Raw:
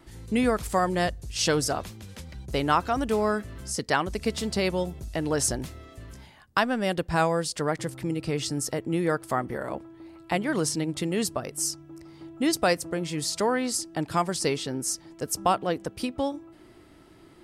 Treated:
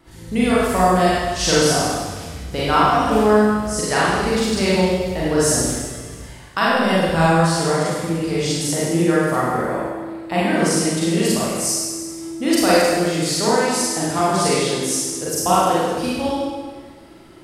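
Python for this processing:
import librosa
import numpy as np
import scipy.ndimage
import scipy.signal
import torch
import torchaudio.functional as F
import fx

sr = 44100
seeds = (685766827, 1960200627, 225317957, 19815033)

y = fx.rev_schroeder(x, sr, rt60_s=1.5, comb_ms=33, drr_db=-8.5)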